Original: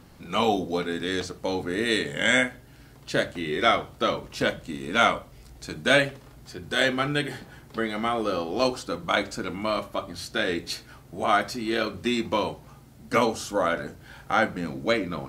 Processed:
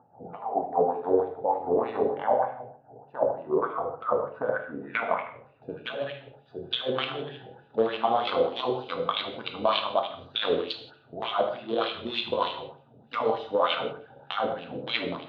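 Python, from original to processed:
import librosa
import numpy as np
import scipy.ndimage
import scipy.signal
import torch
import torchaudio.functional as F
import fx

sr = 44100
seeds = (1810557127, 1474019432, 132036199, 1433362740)

y = fx.wiener(x, sr, points=41)
y = scipy.signal.sosfilt(scipy.signal.butter(2, 70.0, 'highpass', fs=sr, output='sos'), y)
y = fx.filter_sweep_lowpass(y, sr, from_hz=800.0, to_hz=3400.0, start_s=3.02, end_s=6.14, q=4.8)
y = fx.graphic_eq_10(y, sr, hz=(125, 1000, 2000, 4000, 8000), db=(11, 11, -10, 9, 7))
y = fx.over_compress(y, sr, threshold_db=-23.0, ratio=-1.0)
y = fx.peak_eq(y, sr, hz=97.0, db=8.5, octaves=0.24)
y = fx.echo_filtered(y, sr, ms=77, feedback_pct=35, hz=4800.0, wet_db=-7.5)
y = fx.filter_lfo_bandpass(y, sr, shape='sine', hz=3.3, low_hz=480.0, high_hz=2600.0, q=3.3)
y = fx.rev_gated(y, sr, seeds[0], gate_ms=200, shape='falling', drr_db=4.0)
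y = F.gain(torch.from_numpy(y), 4.0).numpy()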